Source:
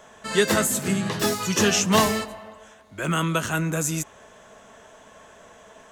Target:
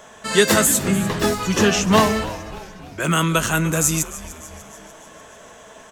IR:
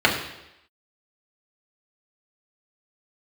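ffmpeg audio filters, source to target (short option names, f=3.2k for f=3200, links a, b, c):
-filter_complex "[0:a]asetnsamples=n=441:p=0,asendcmd='0.79 highshelf g -8;3 highshelf g 5',highshelf=f=3.9k:g=3.5,asplit=6[a][b][c][d][e][f];[b]adelay=296,afreqshift=-120,volume=-16dB[g];[c]adelay=592,afreqshift=-240,volume=-21.5dB[h];[d]adelay=888,afreqshift=-360,volume=-27dB[i];[e]adelay=1184,afreqshift=-480,volume=-32.5dB[j];[f]adelay=1480,afreqshift=-600,volume=-38.1dB[k];[a][g][h][i][j][k]amix=inputs=6:normalize=0,volume=4.5dB"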